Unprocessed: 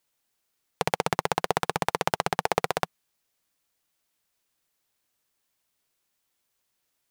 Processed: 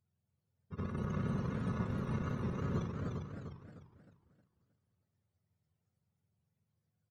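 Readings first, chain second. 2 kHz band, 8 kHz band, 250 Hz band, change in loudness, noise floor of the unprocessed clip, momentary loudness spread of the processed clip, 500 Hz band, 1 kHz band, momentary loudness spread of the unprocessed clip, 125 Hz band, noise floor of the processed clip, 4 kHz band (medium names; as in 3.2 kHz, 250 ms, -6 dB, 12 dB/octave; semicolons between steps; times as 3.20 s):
-18.5 dB, under -25 dB, +1.0 dB, -10.0 dB, -78 dBFS, 13 LU, -14.0 dB, -20.0 dB, 4 LU, +3.0 dB, -84 dBFS, -24.0 dB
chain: spectrum inverted on a logarithmic axis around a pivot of 440 Hz; pre-echo 79 ms -15 dB; in parallel at -5 dB: hard clipper -29.5 dBFS, distortion -6 dB; on the sum: treble shelf 3.4 kHz +8.5 dB; compressor with a negative ratio -27 dBFS, ratio -0.5; peaking EQ 300 Hz -13.5 dB 0.47 oct; on a send: multi-tap echo 52/401 ms -11/-7 dB; on the sum: modulated delay 307 ms, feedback 39%, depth 205 cents, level -4.5 dB; trim -6.5 dB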